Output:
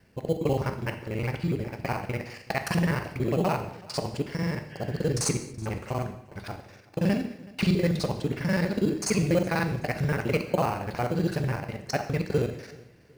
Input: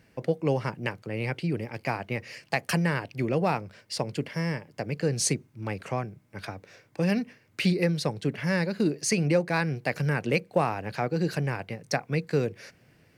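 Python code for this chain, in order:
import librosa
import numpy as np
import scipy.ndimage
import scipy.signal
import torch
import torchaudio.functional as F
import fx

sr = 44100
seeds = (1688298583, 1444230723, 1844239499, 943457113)

p1 = fx.local_reverse(x, sr, ms=41.0)
p2 = fx.sample_hold(p1, sr, seeds[0], rate_hz=3600.0, jitter_pct=0)
p3 = p1 + (p2 * librosa.db_to_amplitude(-10.0))
p4 = fx.peak_eq(p3, sr, hz=78.0, db=3.0, octaves=1.1)
p5 = p4 + fx.echo_feedback(p4, sr, ms=375, feedback_pct=33, wet_db=-22.5, dry=0)
p6 = fx.spec_repair(p5, sr, seeds[1], start_s=4.73, length_s=0.25, low_hz=1500.0, high_hz=3400.0, source='after')
p7 = fx.rev_gated(p6, sr, seeds[2], gate_ms=260, shape='falling', drr_db=6.5)
y = p7 * librosa.db_to_amplitude(-2.5)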